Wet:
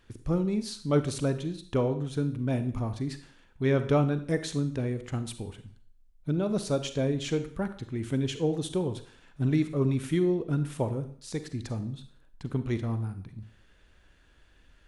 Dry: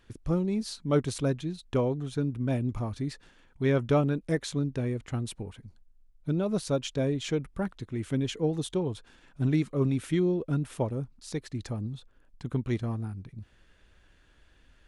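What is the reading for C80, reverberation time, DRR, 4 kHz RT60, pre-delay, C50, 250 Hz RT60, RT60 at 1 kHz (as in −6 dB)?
15.5 dB, 0.50 s, 10.0 dB, 0.50 s, 35 ms, 11.5 dB, 0.45 s, 0.50 s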